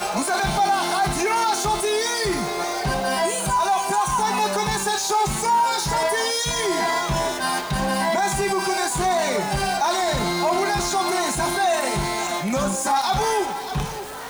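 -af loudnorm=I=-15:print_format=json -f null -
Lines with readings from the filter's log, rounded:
"input_i" : "-21.9",
"input_tp" : "-10.7",
"input_lra" : "1.9",
"input_thresh" : "-31.9",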